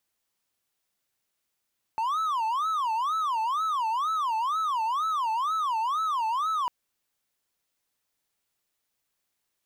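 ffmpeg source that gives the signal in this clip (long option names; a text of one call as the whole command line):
ffmpeg -f lavfi -i "aevalsrc='0.075*(1-4*abs(mod((1093.5*t-216.5/(2*PI*2.1)*sin(2*PI*2.1*t))+0.25,1)-0.5))':duration=4.7:sample_rate=44100" out.wav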